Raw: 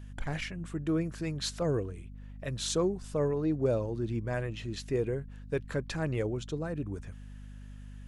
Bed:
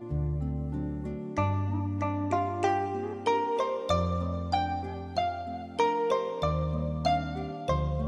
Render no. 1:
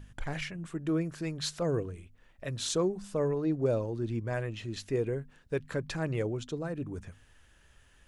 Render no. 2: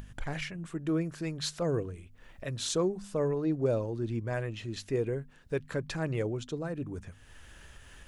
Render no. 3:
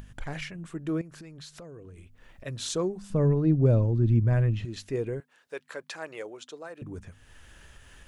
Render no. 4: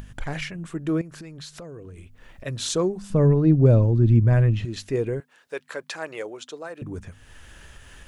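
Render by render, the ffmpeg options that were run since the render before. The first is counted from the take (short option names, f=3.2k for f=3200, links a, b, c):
-af "bandreject=f=50:t=h:w=4,bandreject=f=100:t=h:w=4,bandreject=f=150:t=h:w=4,bandreject=f=200:t=h:w=4,bandreject=f=250:t=h:w=4"
-af "acompressor=mode=upward:threshold=-40dB:ratio=2.5"
-filter_complex "[0:a]asettb=1/sr,asplit=3[a][b][c];[a]atrim=end=1.014[d];[b]atrim=start=1.01:end=2.46,asetpts=PTS-STARTPTS,afade=t=in:d=0.004:c=qsin,afade=t=out:st=1.446:d=0.004:c=qsin,acompressor=threshold=-42dB:ratio=8:attack=3.2:release=140:knee=1:detection=peak[e];[c]atrim=start=2.456[f];[d][e]acrossfade=d=0.004:c1=hsin:c2=qsin[g];[g][f]acrossfade=d=0.004:c1=qsin:c2=hsin,asettb=1/sr,asplit=3[h][i][j];[h]atrim=end=3.104[k];[i]atrim=start=3.1:end=4.65,asetpts=PTS-STARTPTS,afade=t=in:d=0.004:c=qsin,afade=t=out:st=1.546:d=0.004:c=qsin,bass=f=250:g=15,treble=f=4k:g=-6[l];[j]atrim=start=4.646[m];[k][l]acrossfade=d=0.004:c1=hsin:c2=qsin[n];[n][m]acrossfade=d=0.004:c1=qsin:c2=hsin,asettb=1/sr,asplit=3[o][p][q];[o]atrim=end=5.204[r];[p]atrim=start=5.2:end=6.82,asetpts=PTS-STARTPTS,afade=t=in:d=0.004:c=qsin,afade=t=out:st=1.616:d=0.004:c=qsin,highpass=570[s];[q]atrim=start=6.816[t];[r][s]acrossfade=d=0.004:c1=hsin:c2=qsin[u];[u][t]acrossfade=d=0.004:c1=qsin:c2=hsin"
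-af "volume=5.5dB"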